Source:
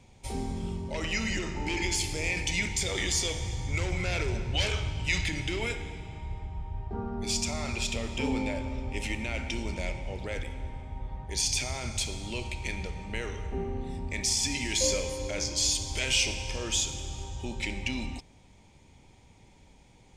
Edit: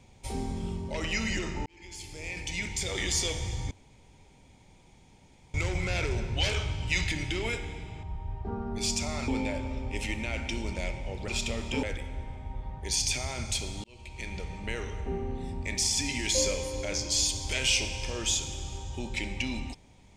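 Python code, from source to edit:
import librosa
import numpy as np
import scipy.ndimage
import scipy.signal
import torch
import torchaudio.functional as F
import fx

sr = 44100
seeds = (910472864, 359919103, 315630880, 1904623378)

y = fx.edit(x, sr, fx.fade_in_span(start_s=1.66, length_s=1.54),
    fx.insert_room_tone(at_s=3.71, length_s=1.83),
    fx.cut(start_s=6.2, length_s=0.29),
    fx.move(start_s=7.74, length_s=0.55, to_s=10.29),
    fx.fade_in_span(start_s=12.3, length_s=0.65), tone=tone)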